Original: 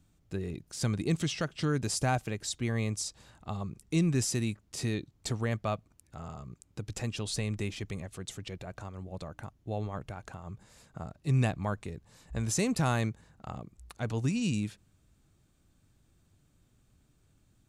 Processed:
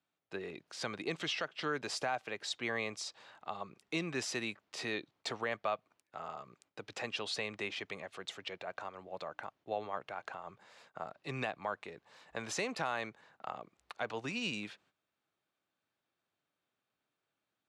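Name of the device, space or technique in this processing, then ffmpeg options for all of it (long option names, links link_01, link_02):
DJ mixer with the lows and highs turned down: -filter_complex "[0:a]agate=range=-12dB:threshold=-59dB:ratio=16:detection=peak,highpass=190,acrossover=split=480 4400:gain=0.158 1 0.0891[link_01][link_02][link_03];[link_01][link_02][link_03]amix=inputs=3:normalize=0,alimiter=level_in=4.5dB:limit=-24dB:level=0:latency=1:release=320,volume=-4.5dB,volume=4.5dB"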